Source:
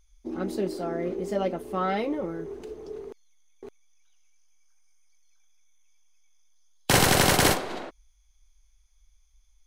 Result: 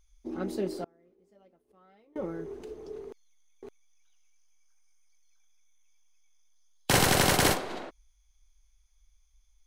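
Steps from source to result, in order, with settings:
0:00.84–0:02.16: gate with flip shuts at −32 dBFS, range −31 dB
level −3 dB

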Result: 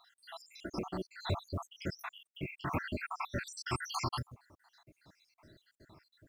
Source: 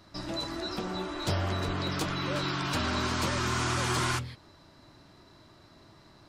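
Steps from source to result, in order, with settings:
time-frequency cells dropped at random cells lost 81%
0:01.99–0:03.47: flat-topped bell 6,200 Hz −13.5 dB
log-companded quantiser 8 bits
level −1.5 dB

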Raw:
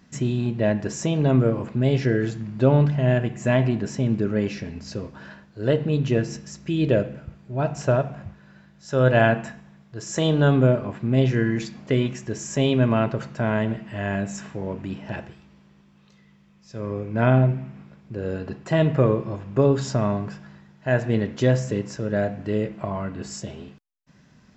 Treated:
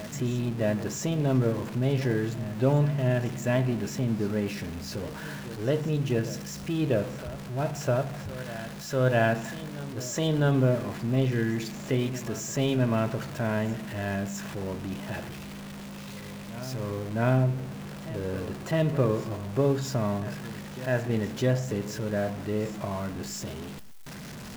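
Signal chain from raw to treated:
converter with a step at zero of −29 dBFS
backwards echo 656 ms −15.5 dB
level −6.5 dB

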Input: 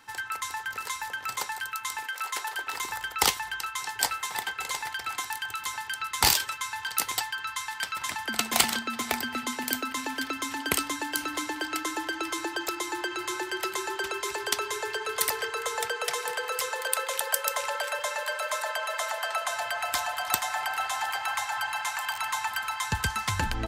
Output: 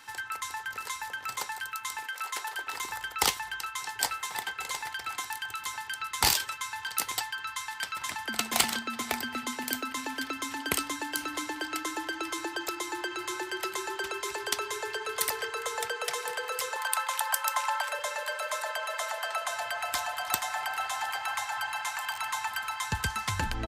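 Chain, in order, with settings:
0:16.76–0:17.89: low shelf with overshoot 600 Hz −13 dB, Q 3
downsampling to 32,000 Hz
one half of a high-frequency compander encoder only
level −2.5 dB

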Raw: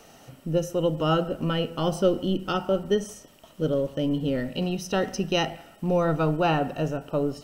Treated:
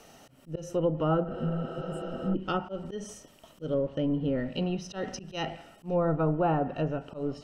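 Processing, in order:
volume swells 161 ms
healed spectral selection 0:01.32–0:02.32, 260–6,800 Hz before
treble cut that deepens with the level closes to 1,200 Hz, closed at −20 dBFS
level −2.5 dB

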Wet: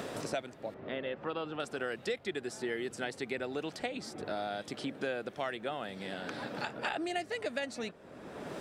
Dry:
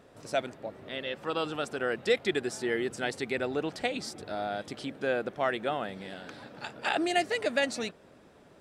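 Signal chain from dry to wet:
0:00.74–0:01.60: Bessel low-pass filter 1,500 Hz, order 2
multiband upward and downward compressor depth 100%
level −6.5 dB

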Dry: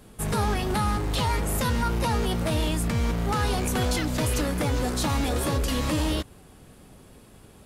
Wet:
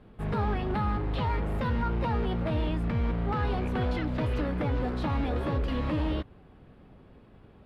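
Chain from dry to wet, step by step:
high-frequency loss of the air 400 metres
level −2.5 dB

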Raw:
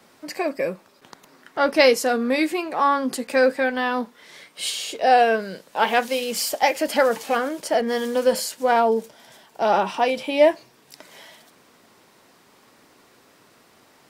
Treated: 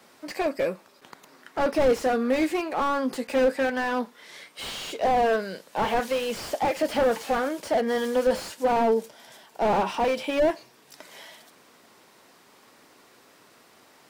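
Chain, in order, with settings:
low-shelf EQ 190 Hz −6.5 dB
slew-rate limiting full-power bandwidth 73 Hz

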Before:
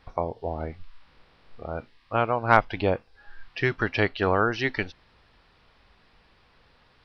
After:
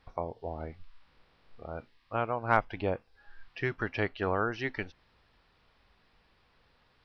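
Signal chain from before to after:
dynamic equaliser 4,200 Hz, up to −6 dB, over −46 dBFS, Q 1.5
level −7 dB

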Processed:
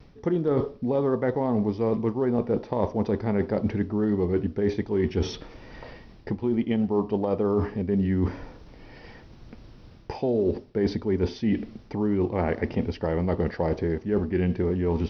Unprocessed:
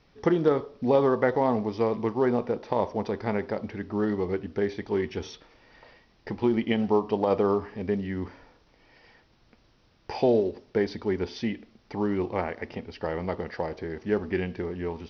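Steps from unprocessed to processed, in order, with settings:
low-shelf EQ 470 Hz +11.5 dB
reversed playback
downward compressor 12 to 1, threshold −27 dBFS, peak gain reduction 17.5 dB
reversed playback
pitch vibrato 1.1 Hz 27 cents
level +6 dB

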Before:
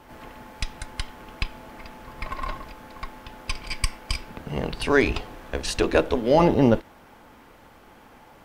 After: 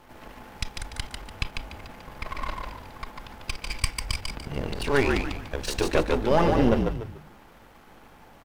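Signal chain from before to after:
gain on one half-wave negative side −12 dB
echo with shifted repeats 146 ms, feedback 33%, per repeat −51 Hz, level −4 dB

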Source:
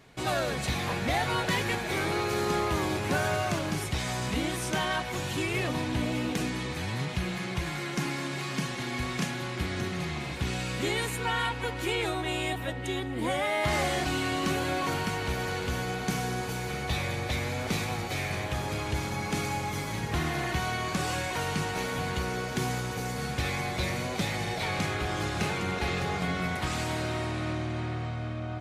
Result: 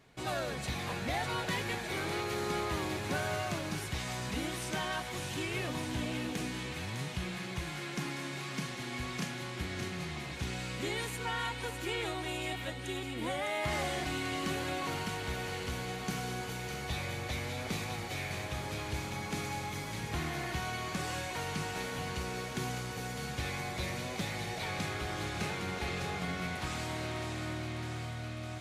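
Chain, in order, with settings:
delay with a high-pass on its return 605 ms, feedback 74%, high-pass 2,000 Hz, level −6.5 dB
level −6.5 dB

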